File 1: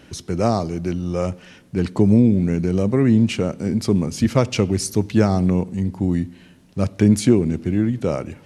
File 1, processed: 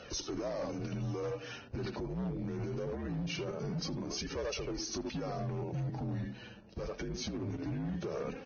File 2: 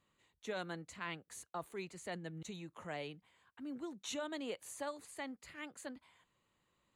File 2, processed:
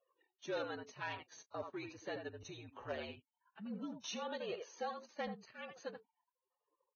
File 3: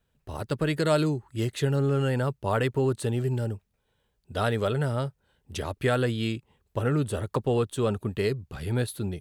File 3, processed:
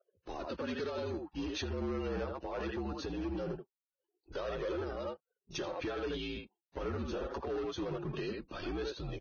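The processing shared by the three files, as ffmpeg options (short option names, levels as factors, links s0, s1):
-filter_complex "[0:a]highpass=f=240:p=1,equalizer=f=590:t=o:w=1.1:g=5,bandreject=f=2100:w=9.1,asplit=2[s0][s1];[s1]adelay=80,highpass=300,lowpass=3400,asoftclip=type=hard:threshold=0.282,volume=0.447[s2];[s0][s2]amix=inputs=2:normalize=0,acompressor=threshold=0.0447:ratio=6,alimiter=level_in=1.41:limit=0.0631:level=0:latency=1:release=17,volume=0.708,acompressor=mode=upward:threshold=0.00251:ratio=2.5,flanger=delay=1.4:depth=7:regen=9:speed=0.22:shape=triangular,asoftclip=type=hard:threshold=0.0188,afreqshift=-57,anlmdn=0.0001,volume=1.26" -ar 16000 -c:a libvorbis -b:a 16k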